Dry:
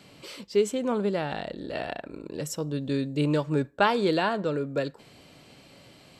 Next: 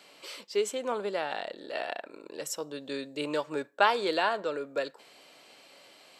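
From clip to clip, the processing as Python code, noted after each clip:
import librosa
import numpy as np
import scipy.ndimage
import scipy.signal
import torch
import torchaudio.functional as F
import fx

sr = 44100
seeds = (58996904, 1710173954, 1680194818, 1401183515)

y = scipy.signal.sosfilt(scipy.signal.butter(2, 510.0, 'highpass', fs=sr, output='sos'), x)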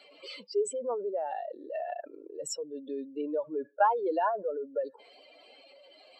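y = fx.spec_expand(x, sr, power=2.7)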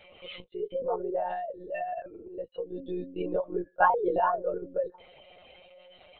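y = fx.lpc_monotone(x, sr, seeds[0], pitch_hz=180.0, order=16)
y = y * 10.0 ** (2.5 / 20.0)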